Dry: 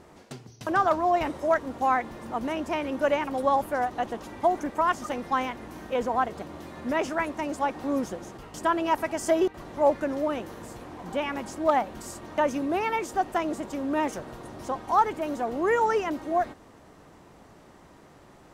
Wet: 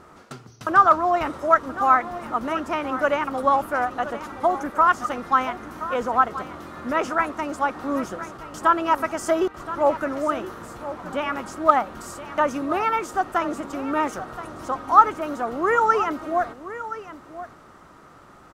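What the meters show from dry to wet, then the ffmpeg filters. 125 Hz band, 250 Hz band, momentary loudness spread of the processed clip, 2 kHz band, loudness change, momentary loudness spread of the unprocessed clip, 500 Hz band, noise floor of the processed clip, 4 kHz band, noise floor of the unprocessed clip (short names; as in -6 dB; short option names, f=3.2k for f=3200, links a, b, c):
+1.0 dB, +1.5 dB, 15 LU, +5.5 dB, +5.0 dB, 13 LU, +1.5 dB, -49 dBFS, +1.5 dB, -53 dBFS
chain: -af "equalizer=f=1.3k:w=3.3:g=13,aecho=1:1:1024:0.211,volume=1dB"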